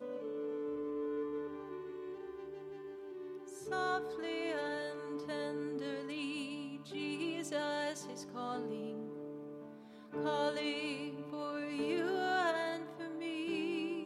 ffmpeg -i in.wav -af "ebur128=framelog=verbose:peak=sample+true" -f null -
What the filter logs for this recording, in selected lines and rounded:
Integrated loudness:
  I:         -39.4 LUFS
  Threshold: -49.5 LUFS
Loudness range:
  LRA:         5.0 LU
  Threshold: -59.8 LUFS
  LRA low:   -42.0 LUFS
  LRA high:  -37.0 LUFS
Sample peak:
  Peak:      -21.6 dBFS
True peak:
  Peak:      -21.6 dBFS